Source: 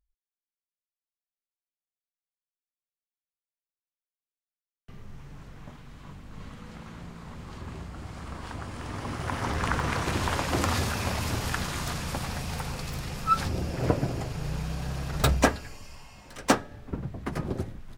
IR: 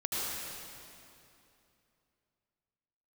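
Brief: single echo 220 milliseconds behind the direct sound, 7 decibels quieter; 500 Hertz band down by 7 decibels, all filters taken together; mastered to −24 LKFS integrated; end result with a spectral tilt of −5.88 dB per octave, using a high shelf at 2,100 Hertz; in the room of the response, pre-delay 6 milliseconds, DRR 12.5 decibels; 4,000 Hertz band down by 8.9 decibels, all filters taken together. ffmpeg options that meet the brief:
-filter_complex "[0:a]equalizer=frequency=500:width_type=o:gain=-8.5,highshelf=frequency=2100:gain=-7.5,equalizer=frequency=4000:width_type=o:gain=-4,aecho=1:1:220:0.447,asplit=2[link_01][link_02];[1:a]atrim=start_sample=2205,adelay=6[link_03];[link_02][link_03]afir=irnorm=-1:irlink=0,volume=-19dB[link_04];[link_01][link_04]amix=inputs=2:normalize=0,volume=8dB"

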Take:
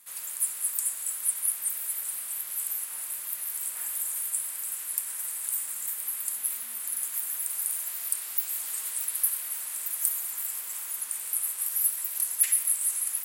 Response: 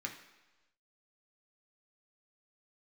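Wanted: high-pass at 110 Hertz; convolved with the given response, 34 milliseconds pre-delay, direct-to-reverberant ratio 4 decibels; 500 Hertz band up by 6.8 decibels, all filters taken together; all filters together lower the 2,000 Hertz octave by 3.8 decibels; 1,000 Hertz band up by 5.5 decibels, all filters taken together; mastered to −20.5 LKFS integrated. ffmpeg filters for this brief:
-filter_complex "[0:a]highpass=110,equalizer=frequency=500:width_type=o:gain=6.5,equalizer=frequency=1000:width_type=o:gain=7.5,equalizer=frequency=2000:width_type=o:gain=-7.5,asplit=2[link_01][link_02];[1:a]atrim=start_sample=2205,adelay=34[link_03];[link_02][link_03]afir=irnorm=-1:irlink=0,volume=-4.5dB[link_04];[link_01][link_04]amix=inputs=2:normalize=0,volume=7dB"

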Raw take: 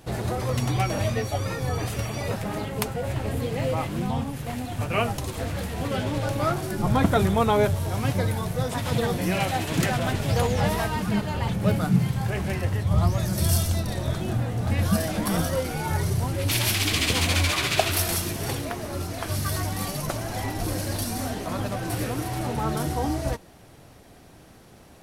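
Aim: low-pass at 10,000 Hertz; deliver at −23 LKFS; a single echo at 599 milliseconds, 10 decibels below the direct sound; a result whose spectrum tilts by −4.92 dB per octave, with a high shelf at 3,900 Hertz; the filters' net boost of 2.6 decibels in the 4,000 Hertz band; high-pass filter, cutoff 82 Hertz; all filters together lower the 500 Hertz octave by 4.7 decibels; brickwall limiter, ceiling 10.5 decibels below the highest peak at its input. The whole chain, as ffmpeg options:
ffmpeg -i in.wav -af "highpass=82,lowpass=10000,equalizer=frequency=500:width_type=o:gain=-6,highshelf=frequency=3900:gain=-5,equalizer=frequency=4000:width_type=o:gain=6.5,alimiter=limit=-16.5dB:level=0:latency=1,aecho=1:1:599:0.316,volume=5dB" out.wav

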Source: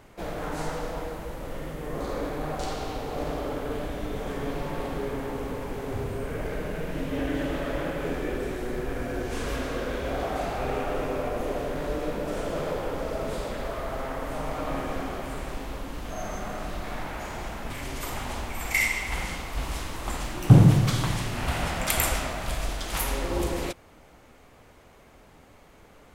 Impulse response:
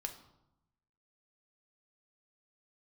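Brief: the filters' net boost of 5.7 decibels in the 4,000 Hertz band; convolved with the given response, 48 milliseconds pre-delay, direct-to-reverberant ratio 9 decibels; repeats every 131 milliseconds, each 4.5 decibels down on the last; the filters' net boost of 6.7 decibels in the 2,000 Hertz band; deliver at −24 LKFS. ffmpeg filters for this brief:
-filter_complex "[0:a]equalizer=frequency=2000:width_type=o:gain=6.5,equalizer=frequency=4000:width_type=o:gain=5,aecho=1:1:131|262|393|524|655|786|917|1048|1179:0.596|0.357|0.214|0.129|0.0772|0.0463|0.0278|0.0167|0.01,asplit=2[link_01][link_02];[1:a]atrim=start_sample=2205,adelay=48[link_03];[link_02][link_03]afir=irnorm=-1:irlink=0,volume=-7.5dB[link_04];[link_01][link_04]amix=inputs=2:normalize=0,volume=1dB"

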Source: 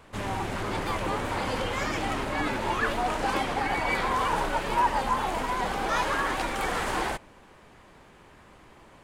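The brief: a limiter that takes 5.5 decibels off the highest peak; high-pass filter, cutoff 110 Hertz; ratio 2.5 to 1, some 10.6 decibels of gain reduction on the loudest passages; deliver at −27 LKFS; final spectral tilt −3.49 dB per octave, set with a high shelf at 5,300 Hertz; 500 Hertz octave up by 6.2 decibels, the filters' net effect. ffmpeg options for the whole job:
ffmpeg -i in.wav -af "highpass=110,equalizer=frequency=500:width_type=o:gain=7.5,highshelf=frequency=5300:gain=8,acompressor=threshold=-35dB:ratio=2.5,volume=8.5dB,alimiter=limit=-18dB:level=0:latency=1" out.wav

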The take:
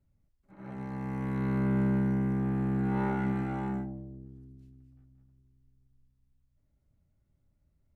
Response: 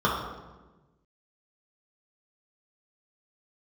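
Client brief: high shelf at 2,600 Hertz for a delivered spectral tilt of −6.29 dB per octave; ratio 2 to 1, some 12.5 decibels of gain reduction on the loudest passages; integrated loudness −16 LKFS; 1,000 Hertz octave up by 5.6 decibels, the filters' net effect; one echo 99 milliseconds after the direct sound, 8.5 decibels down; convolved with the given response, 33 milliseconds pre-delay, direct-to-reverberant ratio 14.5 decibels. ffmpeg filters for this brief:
-filter_complex "[0:a]equalizer=frequency=1000:width_type=o:gain=7.5,highshelf=frequency=2600:gain=-3,acompressor=threshold=-48dB:ratio=2,aecho=1:1:99:0.376,asplit=2[link_01][link_02];[1:a]atrim=start_sample=2205,adelay=33[link_03];[link_02][link_03]afir=irnorm=-1:irlink=0,volume=-31.5dB[link_04];[link_01][link_04]amix=inputs=2:normalize=0,volume=26.5dB"

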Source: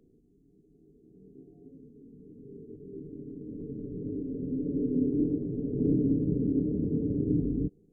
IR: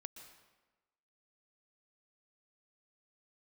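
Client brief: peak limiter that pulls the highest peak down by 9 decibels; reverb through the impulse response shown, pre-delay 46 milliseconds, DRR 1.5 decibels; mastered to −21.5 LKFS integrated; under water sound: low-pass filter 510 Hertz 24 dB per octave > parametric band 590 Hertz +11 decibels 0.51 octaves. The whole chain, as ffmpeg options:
-filter_complex "[0:a]alimiter=limit=-24dB:level=0:latency=1,asplit=2[link_01][link_02];[1:a]atrim=start_sample=2205,adelay=46[link_03];[link_02][link_03]afir=irnorm=-1:irlink=0,volume=3.5dB[link_04];[link_01][link_04]amix=inputs=2:normalize=0,lowpass=frequency=510:width=0.5412,lowpass=frequency=510:width=1.3066,equalizer=frequency=590:width_type=o:width=0.51:gain=11,volume=10dB"

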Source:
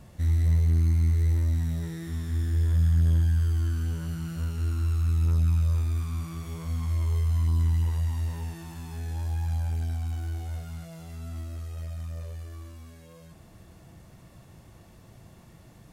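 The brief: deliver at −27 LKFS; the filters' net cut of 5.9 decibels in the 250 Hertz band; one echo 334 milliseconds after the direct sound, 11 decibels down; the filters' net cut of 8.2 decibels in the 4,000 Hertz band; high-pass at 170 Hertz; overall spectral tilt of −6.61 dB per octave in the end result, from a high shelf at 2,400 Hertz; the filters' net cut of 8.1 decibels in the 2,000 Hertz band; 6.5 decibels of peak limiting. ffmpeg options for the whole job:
ffmpeg -i in.wav -af "highpass=170,equalizer=frequency=250:width_type=o:gain=-6,equalizer=frequency=2000:width_type=o:gain=-7.5,highshelf=frequency=2400:gain=-4.5,equalizer=frequency=4000:width_type=o:gain=-4,alimiter=level_in=8dB:limit=-24dB:level=0:latency=1,volume=-8dB,aecho=1:1:334:0.282,volume=16dB" out.wav

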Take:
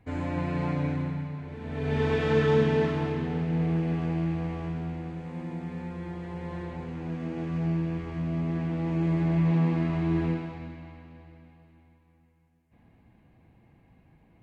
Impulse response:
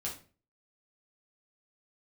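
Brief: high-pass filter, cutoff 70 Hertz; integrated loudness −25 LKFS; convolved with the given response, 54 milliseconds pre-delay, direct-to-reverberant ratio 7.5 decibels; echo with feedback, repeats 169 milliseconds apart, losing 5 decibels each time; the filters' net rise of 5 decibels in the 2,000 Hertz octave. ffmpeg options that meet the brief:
-filter_complex "[0:a]highpass=70,equalizer=frequency=2000:width_type=o:gain=6,aecho=1:1:169|338|507|676|845|1014|1183:0.562|0.315|0.176|0.0988|0.0553|0.031|0.0173,asplit=2[link_01][link_02];[1:a]atrim=start_sample=2205,adelay=54[link_03];[link_02][link_03]afir=irnorm=-1:irlink=0,volume=-8.5dB[link_04];[link_01][link_04]amix=inputs=2:normalize=0,volume=-1dB"

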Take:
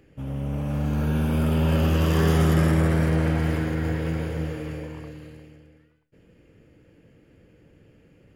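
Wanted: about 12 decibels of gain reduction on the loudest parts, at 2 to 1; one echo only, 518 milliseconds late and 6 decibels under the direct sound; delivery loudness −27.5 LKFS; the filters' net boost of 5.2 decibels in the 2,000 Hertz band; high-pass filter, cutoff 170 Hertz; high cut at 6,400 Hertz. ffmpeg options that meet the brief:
ffmpeg -i in.wav -af "highpass=170,lowpass=6400,equalizer=frequency=2000:width_type=o:gain=6.5,acompressor=threshold=-42dB:ratio=2,aecho=1:1:518:0.501,volume=9dB" out.wav

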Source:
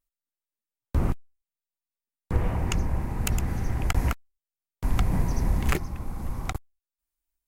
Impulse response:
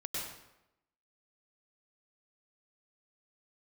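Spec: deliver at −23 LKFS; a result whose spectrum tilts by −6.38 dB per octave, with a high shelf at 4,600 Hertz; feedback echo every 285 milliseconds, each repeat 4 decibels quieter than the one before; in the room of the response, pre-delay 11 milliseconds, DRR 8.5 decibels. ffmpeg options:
-filter_complex "[0:a]highshelf=frequency=4600:gain=-5,aecho=1:1:285|570|855|1140|1425|1710|1995|2280|2565:0.631|0.398|0.25|0.158|0.0994|0.0626|0.0394|0.0249|0.0157,asplit=2[link_01][link_02];[1:a]atrim=start_sample=2205,adelay=11[link_03];[link_02][link_03]afir=irnorm=-1:irlink=0,volume=-11dB[link_04];[link_01][link_04]amix=inputs=2:normalize=0,volume=5dB"

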